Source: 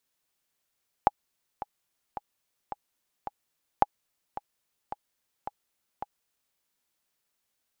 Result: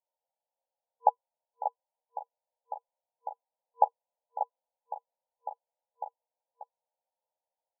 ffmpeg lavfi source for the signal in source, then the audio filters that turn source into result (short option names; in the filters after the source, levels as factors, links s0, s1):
-f lavfi -i "aevalsrc='pow(10,(-5.5-15.5*gte(mod(t,5*60/109),60/109))/20)*sin(2*PI*825*mod(t,60/109))*exp(-6.91*mod(t,60/109)/0.03)':d=5.5:s=44100"
-filter_complex "[0:a]afftfilt=real='re*between(b*sr/4096,470,1000)':imag='im*between(b*sr/4096,470,1000)':win_size=4096:overlap=0.75,asplit=2[s0][s1];[s1]adelay=13,volume=0.794[s2];[s0][s2]amix=inputs=2:normalize=0,asplit=2[s3][s4];[s4]aecho=0:1:587:0.376[s5];[s3][s5]amix=inputs=2:normalize=0"